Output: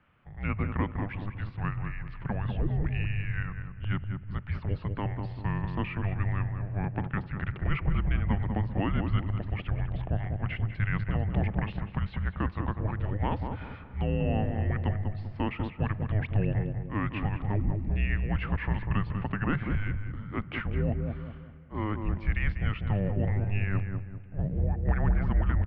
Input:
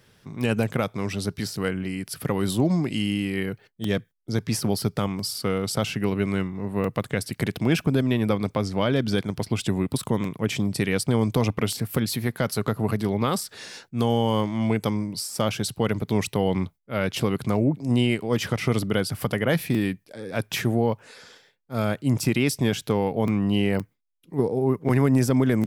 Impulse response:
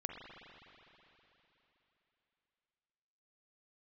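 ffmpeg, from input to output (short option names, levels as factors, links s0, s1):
-filter_complex "[0:a]asplit=2[s0][s1];[s1]adelay=195,lowpass=f=1000:p=1,volume=0.668,asplit=2[s2][s3];[s3]adelay=195,lowpass=f=1000:p=1,volume=0.46,asplit=2[s4][s5];[s5]adelay=195,lowpass=f=1000:p=1,volume=0.46,asplit=2[s6][s7];[s7]adelay=195,lowpass=f=1000:p=1,volume=0.46,asplit=2[s8][s9];[s9]adelay=195,lowpass=f=1000:p=1,volume=0.46,asplit=2[s10][s11];[s11]adelay=195,lowpass=f=1000:p=1,volume=0.46[s12];[s0][s2][s4][s6][s8][s10][s12]amix=inputs=7:normalize=0,asplit=2[s13][s14];[1:a]atrim=start_sample=2205[s15];[s14][s15]afir=irnorm=-1:irlink=0,volume=0.158[s16];[s13][s16]amix=inputs=2:normalize=0,highpass=f=170:t=q:w=0.5412,highpass=f=170:t=q:w=1.307,lowpass=f=2900:t=q:w=0.5176,lowpass=f=2900:t=q:w=0.7071,lowpass=f=2900:t=q:w=1.932,afreqshift=-310,volume=0.531"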